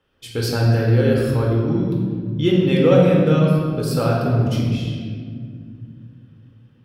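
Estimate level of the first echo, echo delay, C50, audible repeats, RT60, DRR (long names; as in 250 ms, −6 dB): no echo audible, no echo audible, 0.0 dB, no echo audible, 2.0 s, −3.5 dB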